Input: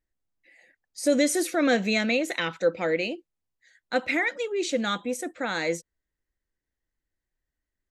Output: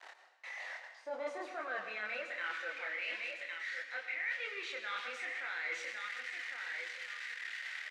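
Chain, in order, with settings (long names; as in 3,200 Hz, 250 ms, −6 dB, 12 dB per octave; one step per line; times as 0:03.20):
spike at every zero crossing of −21.5 dBFS
repeating echo 1,108 ms, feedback 23%, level −14.5 dB
in parallel at −9 dB: sine wavefolder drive 6 dB, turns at −10.5 dBFS
on the sum: multi-voice chorus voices 2, 1.2 Hz, delay 26 ms, depth 3 ms
band-pass filter sweep 800 Hz → 2,000 Hz, 0:00.99–0:02.79
reversed playback
downward compressor 5 to 1, threshold −44 dBFS, peak gain reduction 20 dB
reversed playback
band-pass filter 450–3,800 Hz
convolution reverb RT60 1.1 s, pre-delay 86 ms, DRR 7.5 dB
level +5.5 dB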